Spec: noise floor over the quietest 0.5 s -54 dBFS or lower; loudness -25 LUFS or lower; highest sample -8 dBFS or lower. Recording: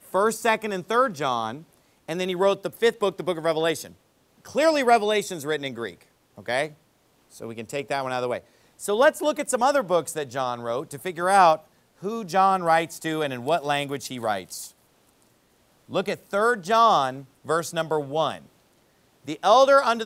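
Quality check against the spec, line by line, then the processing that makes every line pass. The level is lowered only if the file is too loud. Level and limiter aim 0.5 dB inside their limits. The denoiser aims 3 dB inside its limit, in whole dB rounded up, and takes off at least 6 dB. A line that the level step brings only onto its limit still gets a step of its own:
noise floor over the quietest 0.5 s -63 dBFS: OK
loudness -23.5 LUFS: fail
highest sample -4.5 dBFS: fail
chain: gain -2 dB; limiter -8.5 dBFS

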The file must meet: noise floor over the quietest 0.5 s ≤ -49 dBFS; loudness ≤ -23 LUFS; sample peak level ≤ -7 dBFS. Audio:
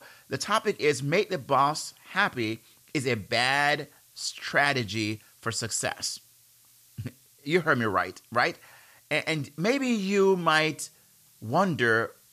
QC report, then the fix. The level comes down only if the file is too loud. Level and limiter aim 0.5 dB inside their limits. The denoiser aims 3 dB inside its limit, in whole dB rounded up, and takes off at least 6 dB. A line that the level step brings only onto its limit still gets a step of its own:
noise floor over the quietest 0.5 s -59 dBFS: OK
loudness -26.5 LUFS: OK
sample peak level -9.0 dBFS: OK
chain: none

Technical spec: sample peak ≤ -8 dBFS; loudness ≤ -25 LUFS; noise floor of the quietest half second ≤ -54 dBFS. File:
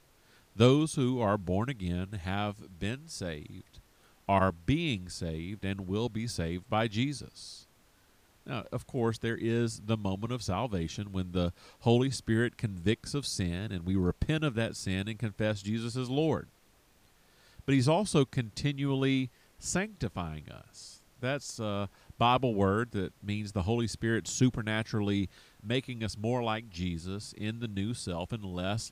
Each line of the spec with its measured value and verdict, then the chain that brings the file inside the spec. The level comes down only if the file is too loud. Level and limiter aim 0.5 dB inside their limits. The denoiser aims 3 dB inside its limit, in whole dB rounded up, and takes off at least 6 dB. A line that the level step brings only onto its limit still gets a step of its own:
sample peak -10.0 dBFS: OK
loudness -32.0 LUFS: OK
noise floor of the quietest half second -64 dBFS: OK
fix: none

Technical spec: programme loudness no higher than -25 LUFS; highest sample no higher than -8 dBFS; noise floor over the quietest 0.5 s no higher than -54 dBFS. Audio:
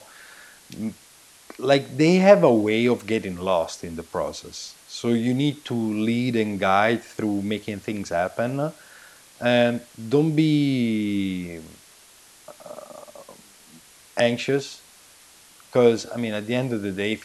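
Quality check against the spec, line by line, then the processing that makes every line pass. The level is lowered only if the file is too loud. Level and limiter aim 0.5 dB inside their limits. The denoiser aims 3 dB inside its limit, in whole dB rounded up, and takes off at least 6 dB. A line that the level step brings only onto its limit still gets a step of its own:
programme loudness -22.5 LUFS: fail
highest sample -1.5 dBFS: fail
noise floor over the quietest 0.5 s -51 dBFS: fail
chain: denoiser 6 dB, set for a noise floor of -51 dBFS; gain -3 dB; limiter -8.5 dBFS

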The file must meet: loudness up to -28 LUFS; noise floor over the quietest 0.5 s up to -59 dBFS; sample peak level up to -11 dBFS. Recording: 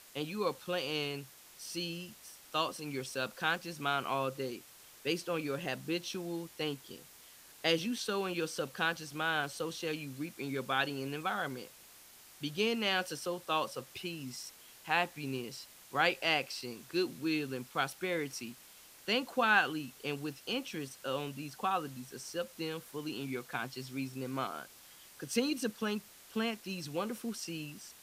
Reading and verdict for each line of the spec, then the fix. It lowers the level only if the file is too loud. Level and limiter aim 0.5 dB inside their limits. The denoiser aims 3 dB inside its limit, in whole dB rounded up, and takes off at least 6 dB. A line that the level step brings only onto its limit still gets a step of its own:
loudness -35.5 LUFS: OK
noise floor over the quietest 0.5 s -57 dBFS: fail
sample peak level -13.0 dBFS: OK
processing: denoiser 6 dB, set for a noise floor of -57 dBFS

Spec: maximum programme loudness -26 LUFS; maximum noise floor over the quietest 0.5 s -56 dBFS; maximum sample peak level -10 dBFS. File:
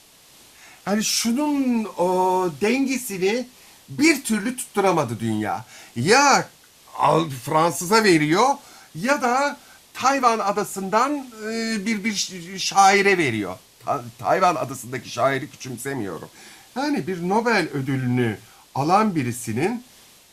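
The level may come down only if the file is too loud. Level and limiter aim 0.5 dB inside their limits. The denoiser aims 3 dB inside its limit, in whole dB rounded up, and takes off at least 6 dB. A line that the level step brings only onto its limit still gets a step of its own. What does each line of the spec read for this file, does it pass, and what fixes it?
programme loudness -21.0 LUFS: fail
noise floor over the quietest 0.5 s -51 dBFS: fail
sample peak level -3.5 dBFS: fail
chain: gain -5.5 dB; limiter -10.5 dBFS

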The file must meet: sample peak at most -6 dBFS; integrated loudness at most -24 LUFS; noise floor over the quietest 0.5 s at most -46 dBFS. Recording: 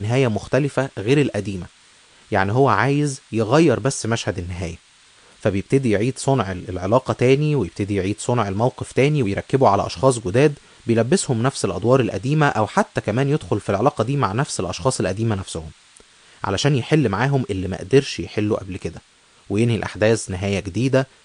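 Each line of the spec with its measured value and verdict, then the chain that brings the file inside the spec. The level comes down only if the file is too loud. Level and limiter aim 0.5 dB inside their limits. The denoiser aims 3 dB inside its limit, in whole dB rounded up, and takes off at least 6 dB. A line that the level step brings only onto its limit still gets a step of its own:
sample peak -2.0 dBFS: fail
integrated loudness -20.0 LUFS: fail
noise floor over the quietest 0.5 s -53 dBFS: OK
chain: gain -4.5 dB

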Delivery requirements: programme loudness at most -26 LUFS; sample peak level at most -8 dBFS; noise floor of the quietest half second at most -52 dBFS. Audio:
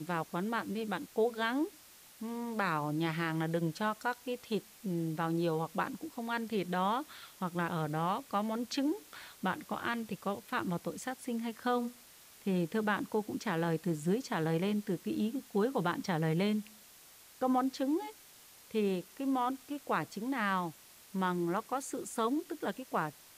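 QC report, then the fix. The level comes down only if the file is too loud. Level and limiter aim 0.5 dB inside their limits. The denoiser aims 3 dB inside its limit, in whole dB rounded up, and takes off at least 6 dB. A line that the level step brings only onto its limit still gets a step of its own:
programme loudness -35.0 LUFS: OK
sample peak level -19.0 dBFS: OK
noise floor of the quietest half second -57 dBFS: OK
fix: none

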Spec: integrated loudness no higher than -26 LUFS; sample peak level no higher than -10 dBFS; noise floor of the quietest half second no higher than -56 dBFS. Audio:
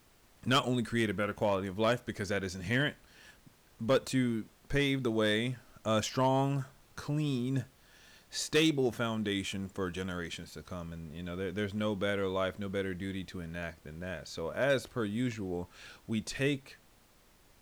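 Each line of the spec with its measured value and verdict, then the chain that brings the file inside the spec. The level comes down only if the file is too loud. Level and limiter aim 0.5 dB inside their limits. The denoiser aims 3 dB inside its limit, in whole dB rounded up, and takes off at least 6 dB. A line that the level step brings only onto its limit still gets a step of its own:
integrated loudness -33.5 LUFS: OK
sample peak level -20.5 dBFS: OK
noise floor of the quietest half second -63 dBFS: OK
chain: none

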